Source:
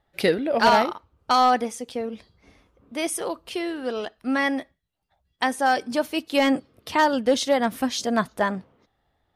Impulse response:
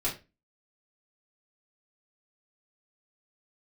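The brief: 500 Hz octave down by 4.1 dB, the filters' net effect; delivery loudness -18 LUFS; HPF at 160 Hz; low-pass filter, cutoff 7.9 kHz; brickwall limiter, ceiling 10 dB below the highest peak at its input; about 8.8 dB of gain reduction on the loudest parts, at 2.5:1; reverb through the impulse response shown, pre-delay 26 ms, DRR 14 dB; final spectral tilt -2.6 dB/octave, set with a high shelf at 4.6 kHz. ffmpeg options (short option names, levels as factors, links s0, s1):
-filter_complex "[0:a]highpass=160,lowpass=7900,equalizer=f=500:t=o:g=-5,highshelf=f=4600:g=5.5,acompressor=threshold=0.0398:ratio=2.5,alimiter=limit=0.0841:level=0:latency=1,asplit=2[s0][s1];[1:a]atrim=start_sample=2205,adelay=26[s2];[s1][s2]afir=irnorm=-1:irlink=0,volume=0.0944[s3];[s0][s3]amix=inputs=2:normalize=0,volume=5.31"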